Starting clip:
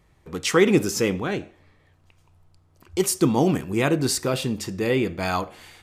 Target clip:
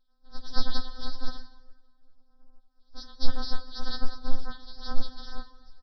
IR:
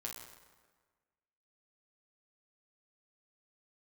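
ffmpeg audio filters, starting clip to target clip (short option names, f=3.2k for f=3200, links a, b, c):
-filter_complex "[0:a]equalizer=f=71:t=o:w=1.3:g=-14.5,aecho=1:1:3.6:0.6,aresample=11025,acrusher=samples=42:mix=1:aa=0.000001,aresample=44100,asuperstop=centerf=2400:order=8:qfactor=1.3,asplit=2[a][b];[1:a]atrim=start_sample=2205,lowpass=8.6k[c];[b][c]afir=irnorm=-1:irlink=0,volume=-3dB[d];[a][d]amix=inputs=2:normalize=0,afftfilt=real='re*3.46*eq(mod(b,12),0)':imag='im*3.46*eq(mod(b,12),0)':win_size=2048:overlap=0.75"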